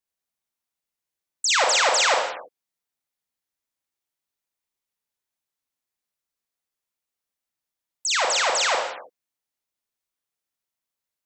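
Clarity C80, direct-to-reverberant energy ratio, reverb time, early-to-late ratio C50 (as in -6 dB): 5.0 dB, -0.5 dB, not exponential, 2.0 dB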